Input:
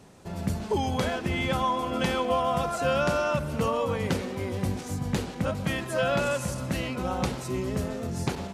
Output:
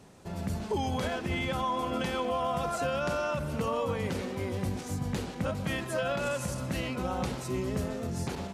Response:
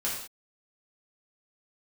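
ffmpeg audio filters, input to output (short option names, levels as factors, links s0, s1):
-af "alimiter=limit=0.106:level=0:latency=1:release=61,volume=0.794"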